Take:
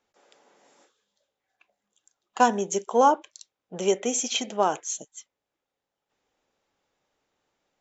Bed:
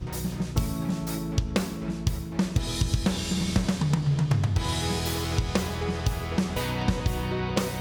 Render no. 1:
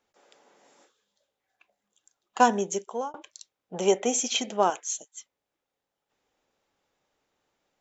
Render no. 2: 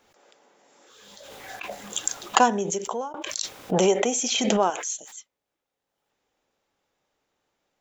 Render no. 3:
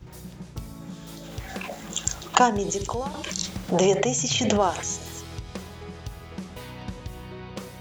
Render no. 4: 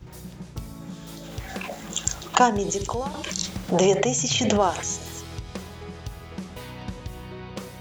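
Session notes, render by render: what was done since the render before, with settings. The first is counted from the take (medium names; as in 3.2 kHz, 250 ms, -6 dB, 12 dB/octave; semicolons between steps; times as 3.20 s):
2.60–3.14 s: fade out; 3.74–4.16 s: peaking EQ 830 Hz +7.5 dB 0.68 oct; 4.70–5.16 s: high-pass 860 Hz 6 dB/octave
swell ahead of each attack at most 26 dB/s
add bed -10.5 dB
trim +1 dB; peak limiter -3 dBFS, peak gain reduction 2 dB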